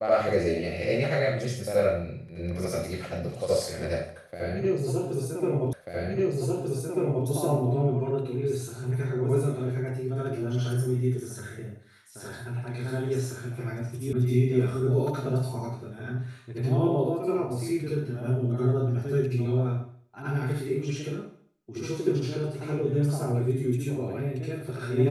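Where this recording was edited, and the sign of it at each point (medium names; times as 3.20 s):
5.73 s: repeat of the last 1.54 s
14.13 s: sound stops dead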